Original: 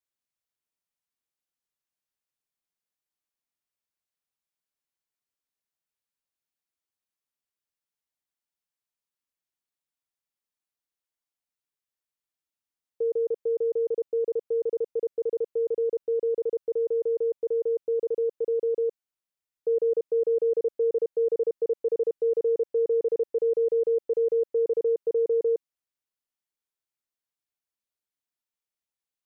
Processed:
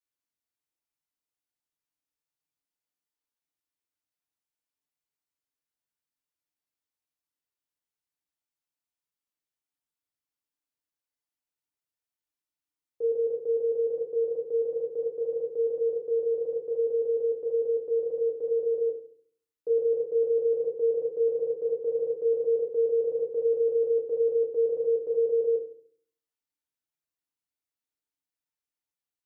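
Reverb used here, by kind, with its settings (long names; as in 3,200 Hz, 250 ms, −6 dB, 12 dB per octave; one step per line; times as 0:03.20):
feedback delay network reverb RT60 0.54 s, low-frequency decay 1.45×, high-frequency decay 0.75×, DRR 0.5 dB
level −5.5 dB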